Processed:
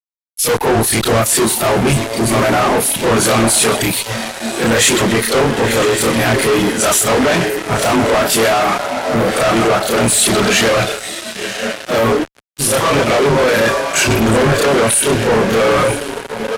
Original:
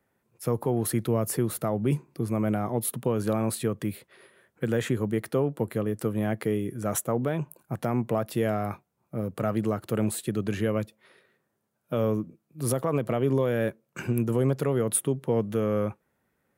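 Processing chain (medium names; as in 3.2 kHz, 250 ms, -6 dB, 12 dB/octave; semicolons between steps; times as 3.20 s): short-time spectra conjugated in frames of 71 ms; in parallel at -2 dB: compression 20:1, threshold -36 dBFS, peak gain reduction 15.5 dB; on the sum: tilt EQ +4 dB/octave; de-esser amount 40%; feedback delay 126 ms, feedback 49%, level -9.5 dB; reverb removal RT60 0.73 s; on a send: echo that smears into a reverb 991 ms, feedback 52%, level -10 dB; on the sum: spectral noise reduction 15 dB; fuzz box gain 55 dB, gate -48 dBFS; low-pass 9.5 kHz 12 dB/octave; three bands expanded up and down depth 100%; trim +2.5 dB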